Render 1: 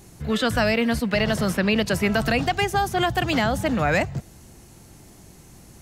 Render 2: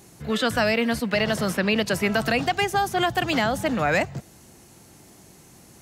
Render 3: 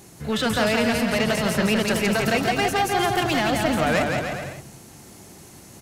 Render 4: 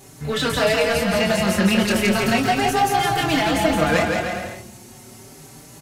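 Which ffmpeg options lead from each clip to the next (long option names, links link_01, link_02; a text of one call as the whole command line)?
ffmpeg -i in.wav -af "highpass=frequency=180:poles=1" out.wav
ffmpeg -i in.wav -filter_complex "[0:a]asoftclip=type=tanh:threshold=-21dB,asplit=2[link_01][link_02];[link_02]aecho=0:1:170|306|414.8|501.8|571.5:0.631|0.398|0.251|0.158|0.1[link_03];[link_01][link_03]amix=inputs=2:normalize=0,volume=3dB" out.wav
ffmpeg -i in.wav -filter_complex "[0:a]asplit=2[link_01][link_02];[link_02]adelay=26,volume=-5.5dB[link_03];[link_01][link_03]amix=inputs=2:normalize=0,asplit=2[link_04][link_05];[link_05]adelay=4.8,afreqshift=0.37[link_06];[link_04][link_06]amix=inputs=2:normalize=1,volume=4.5dB" out.wav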